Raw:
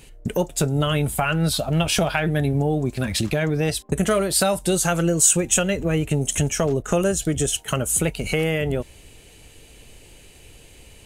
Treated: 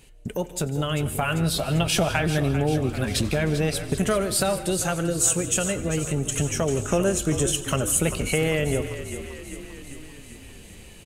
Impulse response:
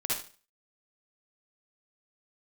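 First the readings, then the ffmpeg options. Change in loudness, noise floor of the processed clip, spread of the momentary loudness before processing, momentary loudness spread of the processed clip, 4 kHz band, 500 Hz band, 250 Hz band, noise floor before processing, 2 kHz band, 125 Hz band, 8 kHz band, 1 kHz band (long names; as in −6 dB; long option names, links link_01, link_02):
−2.5 dB, −44 dBFS, 5 LU, 16 LU, −2.0 dB, −2.5 dB, −2.5 dB, −48 dBFS, −2.0 dB, −2.5 dB, −3.0 dB, −2.5 dB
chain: -filter_complex "[0:a]asplit=2[link_01][link_02];[link_02]asplit=8[link_03][link_04][link_05][link_06][link_07][link_08][link_09][link_10];[link_03]adelay=394,afreqshift=-43,volume=-11.5dB[link_11];[link_04]adelay=788,afreqshift=-86,volume=-15.5dB[link_12];[link_05]adelay=1182,afreqshift=-129,volume=-19.5dB[link_13];[link_06]adelay=1576,afreqshift=-172,volume=-23.5dB[link_14];[link_07]adelay=1970,afreqshift=-215,volume=-27.6dB[link_15];[link_08]adelay=2364,afreqshift=-258,volume=-31.6dB[link_16];[link_09]adelay=2758,afreqshift=-301,volume=-35.6dB[link_17];[link_10]adelay=3152,afreqshift=-344,volume=-39.6dB[link_18];[link_11][link_12][link_13][link_14][link_15][link_16][link_17][link_18]amix=inputs=8:normalize=0[link_19];[link_01][link_19]amix=inputs=2:normalize=0,dynaudnorm=framelen=490:gausssize=5:maxgain=6dB,asplit=2[link_20][link_21];[1:a]atrim=start_sample=2205,adelay=91[link_22];[link_21][link_22]afir=irnorm=-1:irlink=0,volume=-20dB[link_23];[link_20][link_23]amix=inputs=2:normalize=0,volume=-6dB"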